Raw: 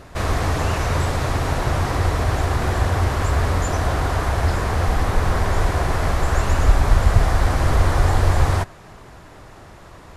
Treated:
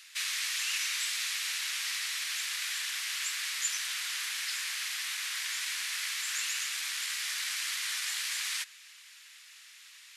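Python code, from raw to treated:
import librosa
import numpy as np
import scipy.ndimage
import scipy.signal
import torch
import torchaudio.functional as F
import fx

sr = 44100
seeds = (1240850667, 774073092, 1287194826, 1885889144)

p1 = 10.0 ** (-13.0 / 20.0) * np.tanh(x / 10.0 ** (-13.0 / 20.0))
p2 = x + (p1 * librosa.db_to_amplitude(-8.0))
y = scipy.signal.sosfilt(scipy.signal.cheby2(4, 80, 390.0, 'highpass', fs=sr, output='sos'), p2)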